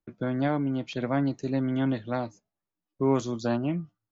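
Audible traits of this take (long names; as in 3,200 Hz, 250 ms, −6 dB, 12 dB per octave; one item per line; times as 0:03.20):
background noise floor −89 dBFS
spectral slope −6.0 dB per octave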